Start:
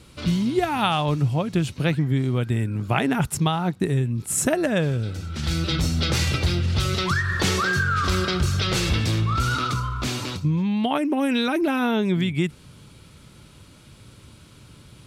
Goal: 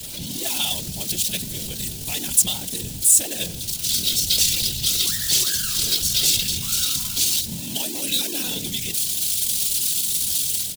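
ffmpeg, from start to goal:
-filter_complex "[0:a]aeval=exprs='val(0)+0.5*0.0841*sgn(val(0))':c=same,afftfilt=real='hypot(re,im)*cos(2*PI*random(0))':imag='hypot(re,im)*sin(2*PI*random(1))':win_size=512:overlap=0.75,equalizer=f=1.2k:w=2.8:g=-11,acrossover=split=230|760|3100[a][b][c][d];[d]dynaudnorm=f=270:g=3:m=14dB[e];[a][b][c][e]amix=inputs=4:normalize=0,bandreject=f=51.72:t=h:w=4,bandreject=f=103.44:t=h:w=4,bandreject=f=155.16:t=h:w=4,bandreject=f=206.88:t=h:w=4,bandreject=f=258.6:t=h:w=4,bandreject=f=310.32:t=h:w=4,bandreject=f=362.04:t=h:w=4,bandreject=f=413.76:t=h:w=4,bandreject=f=465.48:t=h:w=4,atempo=1.4,aexciter=amount=3.3:drive=4.6:freq=2.9k,volume=-8.5dB"

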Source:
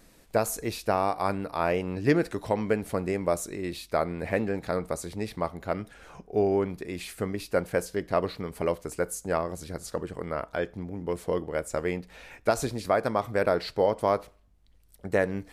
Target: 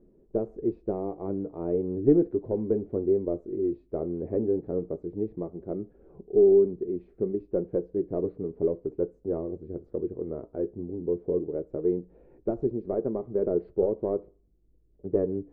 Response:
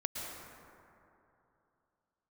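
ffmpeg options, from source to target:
-af "flanger=delay=5:depth=3.4:regen=-57:speed=0.15:shape=sinusoidal,aeval=exprs='0.211*(cos(1*acos(clip(val(0)/0.211,-1,1)))-cos(1*PI/2))+0.0376*(cos(2*acos(clip(val(0)/0.211,-1,1)))-cos(2*PI/2))':c=same,lowpass=f=380:t=q:w=3.9"

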